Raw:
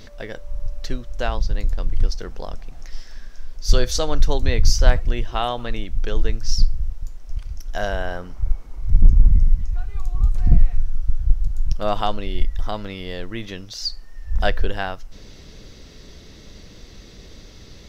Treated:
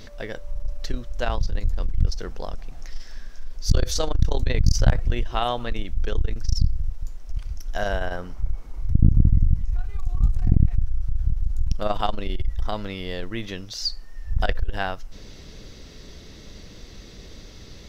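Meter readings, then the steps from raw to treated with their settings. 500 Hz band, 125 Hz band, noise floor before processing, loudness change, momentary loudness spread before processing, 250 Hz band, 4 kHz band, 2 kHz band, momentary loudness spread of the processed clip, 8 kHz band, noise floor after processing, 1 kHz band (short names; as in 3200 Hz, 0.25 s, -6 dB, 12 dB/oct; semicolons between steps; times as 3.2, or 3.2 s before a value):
-3.0 dB, +0.5 dB, -43 dBFS, -2.0 dB, 24 LU, +1.0 dB, -2.5 dB, -2.5 dB, 22 LU, n/a, -43 dBFS, -2.0 dB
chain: core saturation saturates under 100 Hz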